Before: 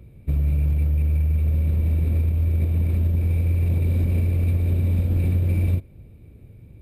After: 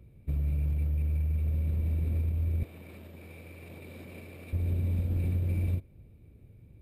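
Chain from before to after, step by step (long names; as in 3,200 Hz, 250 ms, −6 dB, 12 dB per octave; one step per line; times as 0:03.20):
0:02.63–0:04.53: meter weighting curve A
level −8.5 dB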